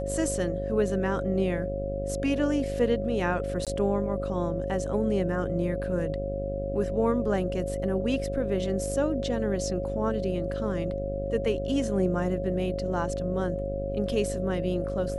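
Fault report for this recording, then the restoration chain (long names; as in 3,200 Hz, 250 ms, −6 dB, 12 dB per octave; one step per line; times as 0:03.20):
mains buzz 50 Hz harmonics 14 −34 dBFS
whistle 550 Hz −32 dBFS
0:03.65–0:03.67: drop-out 17 ms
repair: hum removal 50 Hz, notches 14
notch filter 550 Hz, Q 30
repair the gap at 0:03.65, 17 ms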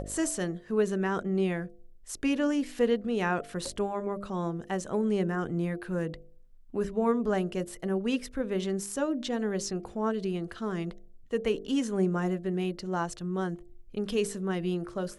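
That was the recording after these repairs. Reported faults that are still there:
none of them is left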